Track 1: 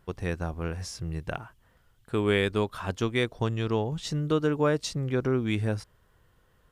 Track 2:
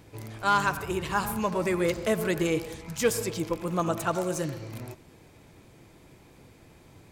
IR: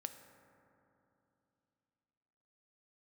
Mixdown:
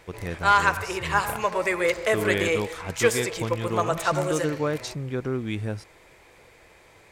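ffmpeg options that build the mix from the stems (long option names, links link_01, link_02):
-filter_complex "[0:a]volume=-2dB[link_01];[1:a]equalizer=frequency=125:width_type=o:width=1:gain=-6,equalizer=frequency=250:width_type=o:width=1:gain=-8,equalizer=frequency=500:width_type=o:width=1:gain=8,equalizer=frequency=1000:width_type=o:width=1:gain=4,equalizer=frequency=2000:width_type=o:width=1:gain=11,equalizer=frequency=4000:width_type=o:width=1:gain=3,equalizer=frequency=8000:width_type=o:width=1:gain=5,volume=-3dB[link_02];[link_01][link_02]amix=inputs=2:normalize=0"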